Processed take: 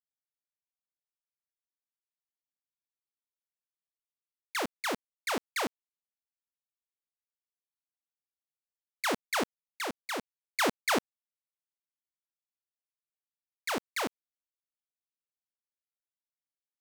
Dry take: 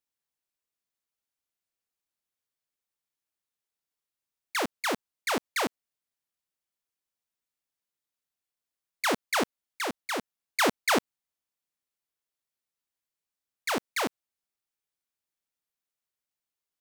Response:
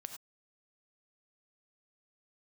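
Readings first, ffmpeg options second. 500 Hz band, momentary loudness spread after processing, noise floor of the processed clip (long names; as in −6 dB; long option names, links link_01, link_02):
−3.5 dB, 8 LU, below −85 dBFS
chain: -af "aeval=exprs='val(0)*gte(abs(val(0)),0.0141)':channel_layout=same,volume=-3.5dB"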